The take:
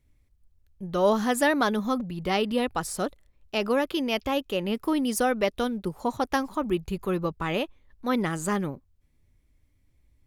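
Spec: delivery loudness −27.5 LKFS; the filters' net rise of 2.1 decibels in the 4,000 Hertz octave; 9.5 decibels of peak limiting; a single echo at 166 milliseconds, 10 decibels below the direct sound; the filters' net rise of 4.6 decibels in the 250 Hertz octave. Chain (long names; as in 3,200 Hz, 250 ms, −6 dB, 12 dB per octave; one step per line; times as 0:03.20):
parametric band 250 Hz +5.5 dB
parametric band 4,000 Hz +3 dB
brickwall limiter −17.5 dBFS
single-tap delay 166 ms −10 dB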